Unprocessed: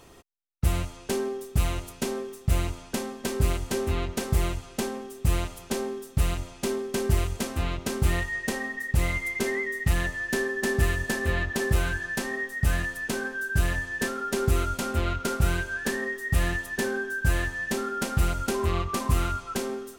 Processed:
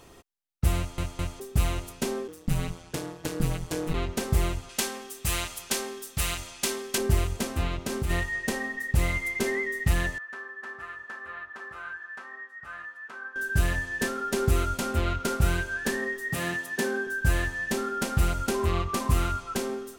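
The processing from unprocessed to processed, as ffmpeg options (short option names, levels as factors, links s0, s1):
-filter_complex "[0:a]asplit=3[s0][s1][s2];[s0]afade=t=out:st=2.27:d=0.02[s3];[s1]aeval=exprs='val(0)*sin(2*PI*84*n/s)':c=same,afade=t=in:st=2.27:d=0.02,afade=t=out:st=3.93:d=0.02[s4];[s2]afade=t=in:st=3.93:d=0.02[s5];[s3][s4][s5]amix=inputs=3:normalize=0,asettb=1/sr,asplit=3[s6][s7][s8];[s6]atrim=end=4.694[s9];[s7]atrim=start=4.69:end=6.98,asetpts=PTS-STARTPTS,afade=t=in:d=0.004:c=qsin,afade=t=out:st=2.286:d=0.004:c=qsin,tiltshelf=f=940:g=-8[s10];[s8]atrim=start=6.976[s11];[s9][s10]acrossfade=d=0.004:c1=hsin:c2=qsin[s12];[s12][s11]acrossfade=d=0.004:c1=qsin:c2=hsin,asplit=3[s13][s14][s15];[s13]afade=t=out:st=7.67:d=0.02[s16];[s14]acompressor=threshold=0.0562:ratio=4:attack=3.2:release=140:knee=1:detection=peak,afade=t=in:st=7.67:d=0.02,afade=t=out:st=8.09:d=0.02[s17];[s15]afade=t=in:st=8.09:d=0.02[s18];[s16][s17][s18]amix=inputs=3:normalize=0,asettb=1/sr,asplit=3[s19][s20][s21];[s19]atrim=end=10.184[s22];[s20]atrim=start=10.18:end=13.36,asetpts=PTS-STARTPTS,afade=t=in:d=0.004:c=qsin,afade=t=out:st=3.176:d=0.004:c=qsin,bandpass=f=1300:t=q:w=3.9[s23];[s21]atrim=start=13.356[s24];[s22][s23]acrossfade=d=0.004:c1=hsin:c2=qsin[s25];[s25][s24]acrossfade=d=0.004:c1=qsin:c2=hsin,asettb=1/sr,asplit=3[s26][s27][s28];[s26]atrim=end=16.324[s29];[s27]atrim=start=16.32:end=17.07,asetpts=PTS-STARTPTS,afade=t=in:d=0.004:c=qsin,afade=t=out:st=0.746:d=0.004:c=qsin,highpass=f=140:w=0.5412,highpass=f=140:w=1.3066[s30];[s28]atrim=start=17.066[s31];[s29][s30]acrossfade=d=0.004:c1=hsin:c2=qsin[s32];[s32][s31]acrossfade=d=0.004:c1=qsin:c2=hsin,asplit=4[s33][s34][s35][s36];[s33]atrim=end=0.982[s37];[s34]atrim=start=0.768:end=0.982[s38];[s35]atrim=start=0.768:end=0.982[s39];[s36]atrim=start=1.398[s40];[s37][s38]acrossfade=d=0.004:c1=hsin:c2=hsin[s41];[s41][s39]acrossfade=d=0.004:c1=hsin:c2=hsin[s42];[s42][s40]acrossfade=d=0.004:c1=hsin:c2=hsin"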